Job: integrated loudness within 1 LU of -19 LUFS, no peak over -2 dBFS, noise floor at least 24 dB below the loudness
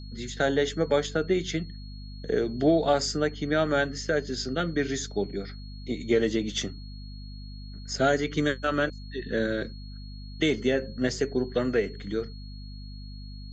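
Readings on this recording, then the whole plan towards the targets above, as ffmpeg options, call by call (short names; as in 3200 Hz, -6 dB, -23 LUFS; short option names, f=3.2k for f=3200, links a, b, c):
hum 50 Hz; harmonics up to 250 Hz; hum level -38 dBFS; steady tone 4300 Hz; tone level -50 dBFS; loudness -27.5 LUFS; peak -11.0 dBFS; loudness target -19.0 LUFS
-> -af "bandreject=f=50:t=h:w=4,bandreject=f=100:t=h:w=4,bandreject=f=150:t=h:w=4,bandreject=f=200:t=h:w=4,bandreject=f=250:t=h:w=4"
-af "bandreject=f=4.3k:w=30"
-af "volume=8.5dB"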